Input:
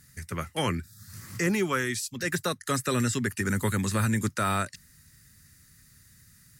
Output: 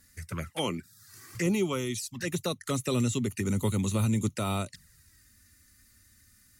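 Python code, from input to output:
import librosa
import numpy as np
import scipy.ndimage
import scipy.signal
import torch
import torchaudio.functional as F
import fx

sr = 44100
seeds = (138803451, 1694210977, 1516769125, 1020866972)

y = fx.highpass(x, sr, hz=200.0, slope=12, at=(0.5, 1.35))
y = fx.env_flanger(y, sr, rest_ms=3.8, full_db=-26.5)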